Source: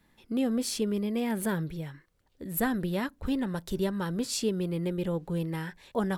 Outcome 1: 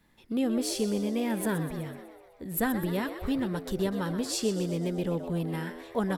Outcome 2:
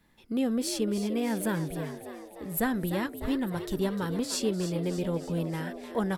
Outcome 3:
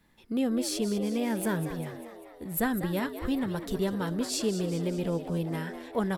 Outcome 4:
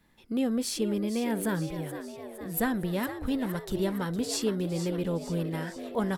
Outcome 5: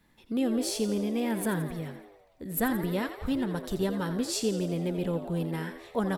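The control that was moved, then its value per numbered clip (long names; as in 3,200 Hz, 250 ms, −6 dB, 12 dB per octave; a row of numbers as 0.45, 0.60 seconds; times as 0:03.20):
echo with shifted repeats, delay time: 125, 300, 198, 461, 85 milliseconds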